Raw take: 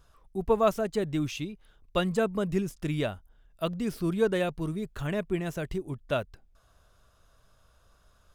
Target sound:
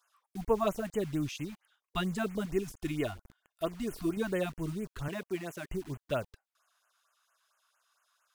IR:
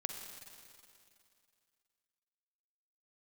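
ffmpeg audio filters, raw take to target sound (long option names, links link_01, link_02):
-filter_complex "[0:a]asettb=1/sr,asplit=3[link_01][link_02][link_03];[link_01]atrim=end=2.454[link_04];[link_02]atrim=start=2.45:end=4.17,asetpts=PTS-STARTPTS,afade=type=in:duration=0.004:curve=qsin,afade=type=out:start_time=1.716:duration=0.004:curve=qsin,aecho=1:1:2.8:0.54,atrim=end_sample=75852[link_05];[link_03]atrim=start=4.166[link_06];[link_04][link_05]acrossfade=duration=0.004:curve1=hsin:curve2=qsin[link_07];[link_07][link_06]acrossfade=duration=0.004:curve1=qsin:curve2=hsin,asettb=1/sr,asplit=3[link_08][link_09][link_10];[link_08]atrim=end=5.084[link_11];[link_09]atrim=start=5.08:end=5.67,asetpts=PTS-STARTPTS,afade=type=in:duration=0.004:curve=qsin,afade=type=out:start_time=0.586:duration=0.004:curve=qsin,highpass=260[link_12];[link_10]atrim=start=5.666[link_13];[link_11][link_12]acrossfade=duration=0.004:curve1=hsin:curve2=qsin[link_14];[link_14][link_13]acrossfade=duration=0.004:curve1=qsin:curve2=hsin,acrossover=split=790|1700[link_15][link_16][link_17];[link_15]acrusher=bits=7:mix=0:aa=0.000001[link_18];[link_18][link_16][link_17]amix=inputs=3:normalize=0,afftfilt=real='re*(1-between(b*sr/1024,400*pow(4600/400,0.5+0.5*sin(2*PI*4.4*pts/sr))/1.41,400*pow(4600/400,0.5+0.5*sin(2*PI*4.4*pts/sr))*1.41))':imag='im*(1-between(b*sr/1024,400*pow(4600/400,0.5+0.5*sin(2*PI*4.4*pts/sr))/1.41,400*pow(4600/400,0.5+0.5*sin(2*PI*4.4*pts/sr))*1.41))':win_size=1024:overlap=0.75,volume=-3.5dB"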